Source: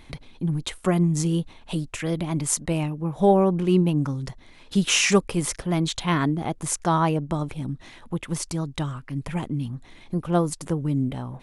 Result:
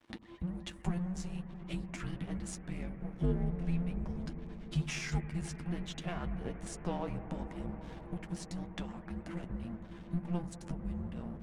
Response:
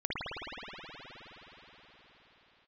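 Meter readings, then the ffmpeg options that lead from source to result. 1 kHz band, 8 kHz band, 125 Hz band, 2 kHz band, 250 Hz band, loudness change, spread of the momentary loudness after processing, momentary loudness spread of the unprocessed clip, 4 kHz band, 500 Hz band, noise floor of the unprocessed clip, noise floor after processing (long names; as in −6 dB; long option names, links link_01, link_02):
−19.0 dB, −21.0 dB, −12.5 dB, −15.5 dB, −14.0 dB, −15.0 dB, 8 LU, 12 LU, −18.5 dB, −19.0 dB, −49 dBFS, −50 dBFS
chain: -filter_complex "[0:a]aeval=exprs='0.501*(cos(1*acos(clip(val(0)/0.501,-1,1)))-cos(1*PI/2))+0.0501*(cos(2*acos(clip(val(0)/0.501,-1,1)))-cos(2*PI/2))+0.0708*(cos(3*acos(clip(val(0)/0.501,-1,1)))-cos(3*PI/2))+0.0141*(cos(5*acos(clip(val(0)/0.501,-1,1)))-cos(5*PI/2))+0.01*(cos(7*acos(clip(val(0)/0.501,-1,1)))-cos(7*PI/2))':channel_layout=same,bass=frequency=250:gain=1,treble=frequency=4000:gain=7,acompressor=threshold=-37dB:ratio=3,flanger=delay=9.6:depth=1.2:regen=36:speed=0.64:shape=triangular,afreqshift=-350,aeval=exprs='sgn(val(0))*max(abs(val(0))-0.00224,0)':channel_layout=same,aemphasis=mode=reproduction:type=75fm,asplit=2[link_01][link_02];[1:a]atrim=start_sample=2205,asetrate=25137,aresample=44100[link_03];[link_02][link_03]afir=irnorm=-1:irlink=0,volume=-20dB[link_04];[link_01][link_04]amix=inputs=2:normalize=0,volume=4dB"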